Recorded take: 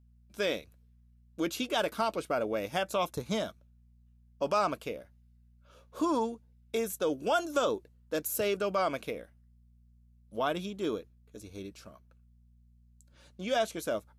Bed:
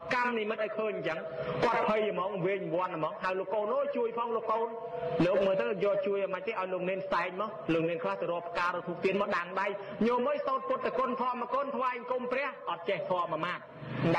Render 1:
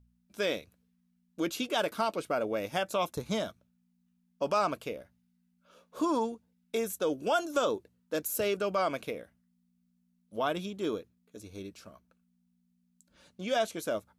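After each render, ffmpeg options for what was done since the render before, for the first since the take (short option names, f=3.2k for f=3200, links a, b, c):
-af "bandreject=f=60:t=h:w=4,bandreject=f=120:t=h:w=4"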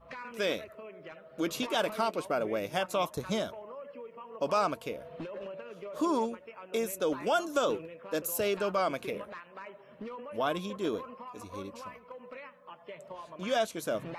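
-filter_complex "[1:a]volume=-14dB[a];[0:a][a]amix=inputs=2:normalize=0"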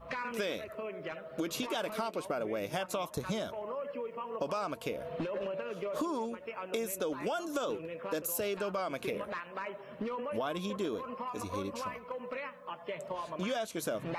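-filter_complex "[0:a]asplit=2[a][b];[b]alimiter=level_in=0.5dB:limit=-24dB:level=0:latency=1,volume=-0.5dB,volume=1dB[c];[a][c]amix=inputs=2:normalize=0,acompressor=threshold=-32dB:ratio=6"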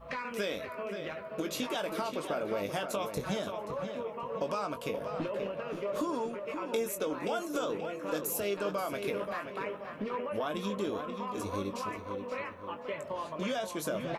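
-filter_complex "[0:a]asplit=2[a][b];[b]adelay=20,volume=-8.5dB[c];[a][c]amix=inputs=2:normalize=0,asplit=2[d][e];[e]adelay=529,lowpass=f=3.3k:p=1,volume=-7dB,asplit=2[f][g];[g]adelay=529,lowpass=f=3.3k:p=1,volume=0.46,asplit=2[h][i];[i]adelay=529,lowpass=f=3.3k:p=1,volume=0.46,asplit=2[j][k];[k]adelay=529,lowpass=f=3.3k:p=1,volume=0.46,asplit=2[l][m];[m]adelay=529,lowpass=f=3.3k:p=1,volume=0.46[n];[d][f][h][j][l][n]amix=inputs=6:normalize=0"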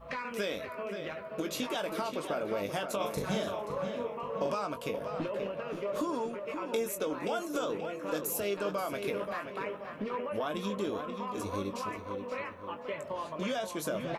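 -filter_complex "[0:a]asettb=1/sr,asplit=3[a][b][c];[a]atrim=end=2.964[d];[b]atrim=start=2.96:end=4.54,asetpts=PTS-STARTPTS,afade=t=in:d=0.004:c=qsin,afade=t=out:st=1.576:d=0.004:c=qsin,asplit=2[e][f];[f]adelay=41,volume=-4dB[g];[e][g]amix=inputs=2:normalize=0,atrim=end_sample=69678[h];[c]atrim=start=4.536[i];[d][h]acrossfade=d=0.004:c1=hsin:c2=qsin[j];[j][i]acrossfade=d=0.004:c1=qsin:c2=hsin"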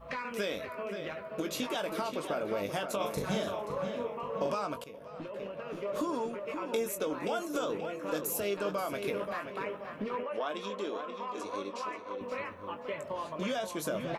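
-filter_complex "[0:a]asettb=1/sr,asplit=3[a][b][c];[a]atrim=end=10.234[d];[b]atrim=start=10.23:end=12.21,asetpts=PTS-STARTPTS,afade=t=in:d=0.004:c=qsin,afade=t=out:st=1.976:d=0.004:c=qsin,highpass=350,lowpass=6.7k[e];[c]atrim=start=12.206[f];[d][e]acrossfade=d=0.004:c1=hsin:c2=qsin[g];[g][f]acrossfade=d=0.004:c1=qsin:c2=hsin,asplit=2[h][i];[h]atrim=end=4.84,asetpts=PTS-STARTPTS,afade=t=out:st=4.836:d=0.004:c=hsin:silence=0.16788[j];[i]atrim=start=4.84,asetpts=PTS-STARTPTS,afade=t=in:d=1.21:silence=0.16788[k];[j][k]concat=n=2:v=0:a=1"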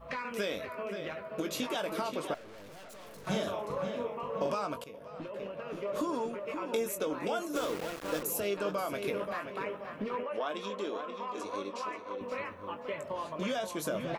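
-filter_complex "[0:a]asettb=1/sr,asplit=3[a][b][c];[a]atrim=end=2.344[d];[b]atrim=start=2.34:end=3.27,asetpts=PTS-STARTPTS,afade=t=in:d=0.004:c=qsin,afade=t=out:st=0.926:d=0.004:c=qsin,aeval=exprs='(tanh(282*val(0)+0.5)-tanh(0.5))/282':c=same[e];[c]atrim=start=3.266[f];[d][e]acrossfade=d=0.004:c1=hsin:c2=qsin[g];[g][f]acrossfade=d=0.004:c1=qsin:c2=hsin,asettb=1/sr,asplit=3[h][i][j];[h]atrim=end=7.564[k];[i]atrim=start=7.56:end=8.23,asetpts=PTS-STARTPTS,afade=t=in:d=0.004:c=qsin,afade=t=out:st=0.666:d=0.004:c=qsin,aeval=exprs='val(0)*gte(abs(val(0)),0.0141)':c=same[l];[j]atrim=start=8.226[m];[k][l]acrossfade=d=0.004:c1=hsin:c2=qsin[n];[n][m]acrossfade=d=0.004:c1=qsin:c2=hsin"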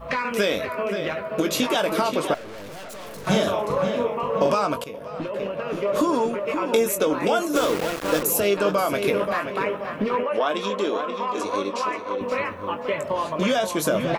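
-af "volume=12dB"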